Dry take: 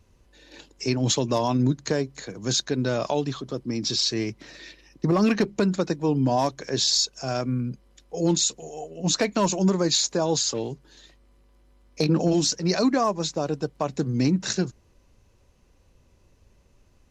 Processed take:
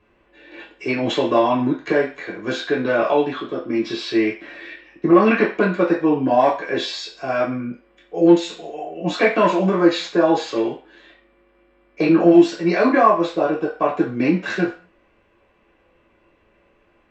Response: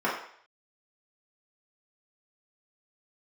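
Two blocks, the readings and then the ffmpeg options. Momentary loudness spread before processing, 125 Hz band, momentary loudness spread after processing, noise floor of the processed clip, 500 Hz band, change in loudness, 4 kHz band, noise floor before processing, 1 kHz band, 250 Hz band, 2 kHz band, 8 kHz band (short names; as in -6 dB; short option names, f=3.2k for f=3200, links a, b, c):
11 LU, -3.0 dB, 14 LU, -60 dBFS, +8.5 dB, +5.5 dB, -4.0 dB, -60 dBFS, +9.0 dB, +6.5 dB, +11.0 dB, under -15 dB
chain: -filter_complex "[0:a]highshelf=f=3.8k:t=q:w=1.5:g=-8[a];[1:a]atrim=start_sample=2205,asetrate=66150,aresample=44100[b];[a][b]afir=irnorm=-1:irlink=0,volume=-2dB"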